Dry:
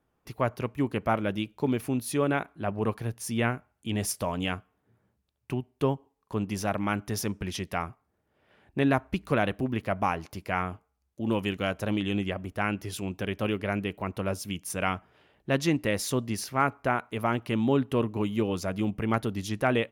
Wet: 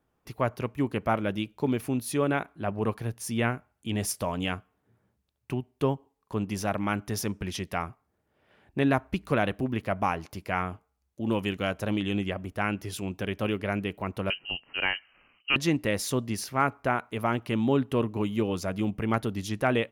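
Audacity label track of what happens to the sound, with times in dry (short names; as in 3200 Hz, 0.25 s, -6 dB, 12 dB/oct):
14.300000	15.560000	inverted band carrier 3000 Hz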